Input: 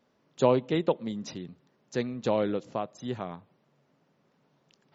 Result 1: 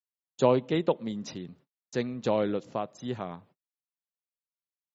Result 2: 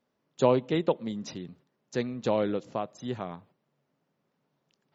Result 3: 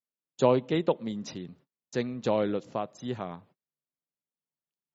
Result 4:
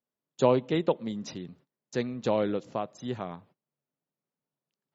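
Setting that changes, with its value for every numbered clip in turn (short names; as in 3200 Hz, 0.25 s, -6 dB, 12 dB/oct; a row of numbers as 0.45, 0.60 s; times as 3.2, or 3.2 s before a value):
gate, range: -52, -8, -36, -24 dB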